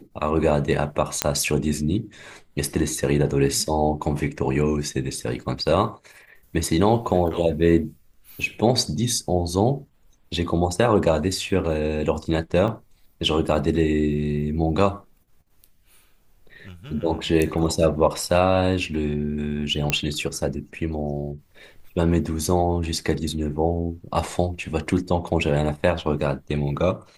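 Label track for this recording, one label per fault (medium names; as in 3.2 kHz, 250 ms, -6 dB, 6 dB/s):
1.220000	1.220000	pop -2 dBFS
12.680000	12.680000	dropout 2.4 ms
19.900000	19.900000	pop -5 dBFS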